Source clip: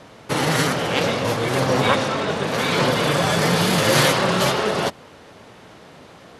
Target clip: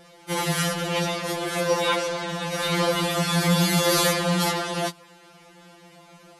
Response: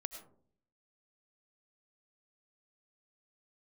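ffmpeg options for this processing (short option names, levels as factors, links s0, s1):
-af "crystalizer=i=1:c=0,afftfilt=real='re*2.83*eq(mod(b,8),0)':imag='im*2.83*eq(mod(b,8),0)':win_size=2048:overlap=0.75,volume=0.668"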